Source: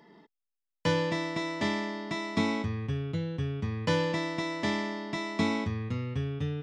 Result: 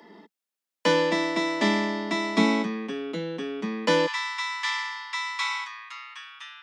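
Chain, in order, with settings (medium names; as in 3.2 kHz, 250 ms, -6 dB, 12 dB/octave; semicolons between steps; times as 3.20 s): steep high-pass 180 Hz 96 dB/octave, from 4.06 s 920 Hz; trim +7 dB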